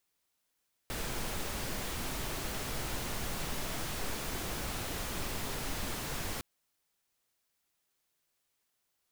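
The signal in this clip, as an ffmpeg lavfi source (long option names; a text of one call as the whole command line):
ffmpeg -f lavfi -i "anoisesrc=color=pink:amplitude=0.0767:duration=5.51:sample_rate=44100:seed=1" out.wav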